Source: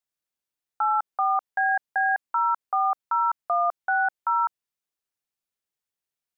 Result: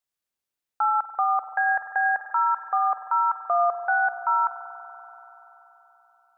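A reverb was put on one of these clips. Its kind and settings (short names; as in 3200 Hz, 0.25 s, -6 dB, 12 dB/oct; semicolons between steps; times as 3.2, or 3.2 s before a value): spring tank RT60 4 s, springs 47 ms, chirp 40 ms, DRR 7 dB; gain +1 dB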